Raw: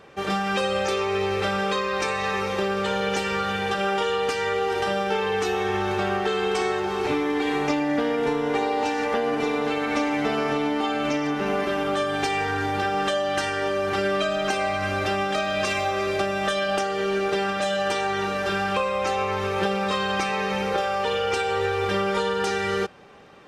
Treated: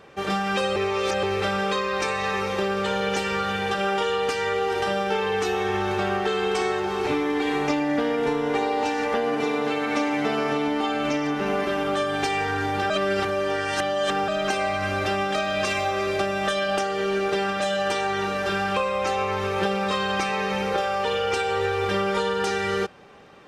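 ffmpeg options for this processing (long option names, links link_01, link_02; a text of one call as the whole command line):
ffmpeg -i in.wav -filter_complex "[0:a]asettb=1/sr,asplit=3[link_01][link_02][link_03];[link_01]atrim=end=9.254[link_04];[link_02]atrim=start=9.25:end=10.68,asetpts=PTS-STARTPTS,afade=type=in:duration=0.004:curve=qsin,afade=type=out:start_time=1.426:duration=0.004:curve=qsin,highpass=97[link_05];[link_03]atrim=start=10.676[link_06];[link_04][link_05]acrossfade=duration=0.004:curve1=hsin:curve2=qsin[link_07];[link_07][link_06]acrossfade=duration=0.004:curve1=qsin:curve2=hsin,asplit=5[link_08][link_09][link_10][link_11][link_12];[link_08]atrim=end=0.762[link_13];[link_09]atrim=start=0.758:end=1.232,asetpts=PTS-STARTPTS,areverse[link_14];[link_10]atrim=start=1.228:end=12.902[link_15];[link_11]atrim=start=12.898:end=14.282,asetpts=PTS-STARTPTS,areverse[link_16];[link_12]atrim=start=14.278[link_17];[link_13][link_14]acrossfade=duration=0.004:curve1=hsin:curve2=hsin[link_18];[link_18][link_15]acrossfade=duration=0.004:curve1=hsin:curve2=hsin[link_19];[link_19][link_16]acrossfade=duration=0.004:curve1=hsin:curve2=hsin[link_20];[link_20][link_17]acrossfade=duration=0.004:curve1=hsin:curve2=hsin" out.wav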